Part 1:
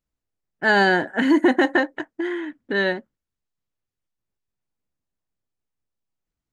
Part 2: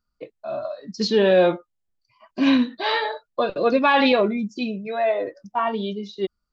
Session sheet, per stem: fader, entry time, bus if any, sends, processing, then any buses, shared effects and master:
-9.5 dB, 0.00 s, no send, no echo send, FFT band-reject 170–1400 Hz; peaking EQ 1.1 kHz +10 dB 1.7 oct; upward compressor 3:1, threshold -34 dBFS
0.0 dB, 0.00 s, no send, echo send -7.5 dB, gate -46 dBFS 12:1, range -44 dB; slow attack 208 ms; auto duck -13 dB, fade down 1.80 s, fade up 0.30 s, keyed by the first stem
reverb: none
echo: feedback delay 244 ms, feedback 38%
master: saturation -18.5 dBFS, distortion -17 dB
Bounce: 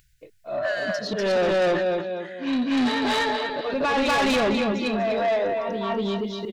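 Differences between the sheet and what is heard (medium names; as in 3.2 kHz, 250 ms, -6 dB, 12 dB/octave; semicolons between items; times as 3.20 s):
stem 1: missing peaking EQ 1.1 kHz +10 dB 1.7 oct; stem 2 0.0 dB -> +10.5 dB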